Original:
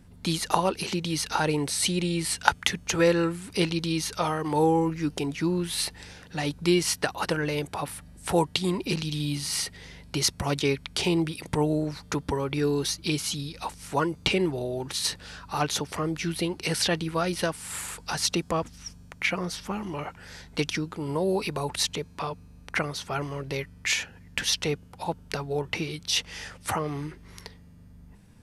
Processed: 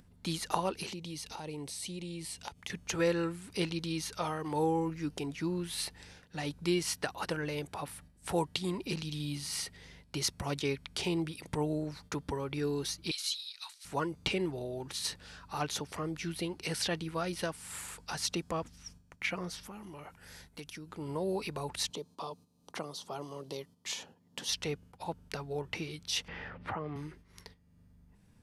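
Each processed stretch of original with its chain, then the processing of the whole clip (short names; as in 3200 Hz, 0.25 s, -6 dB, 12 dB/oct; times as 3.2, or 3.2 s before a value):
0.91–2.7 compressor 2.5:1, threshold -32 dBFS + bell 1500 Hz -10.5 dB 0.59 oct
13.11–13.85 Bessel high-pass 1700 Hz, order 6 + bell 4000 Hz +11 dB 0.38 oct
19.63–20.89 bell 11000 Hz +11.5 dB 0.62 oct + compressor 2.5:1, threshold -38 dBFS + hard clip -26.5 dBFS
21.9–24.49 HPF 200 Hz + band shelf 1900 Hz -13 dB 1.1 oct + three-band squash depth 40%
26.28–26.96 air absorption 370 m + three-band squash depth 70%
whole clip: gate -46 dBFS, range -9 dB; upward compressor, threshold -45 dBFS; gain -8 dB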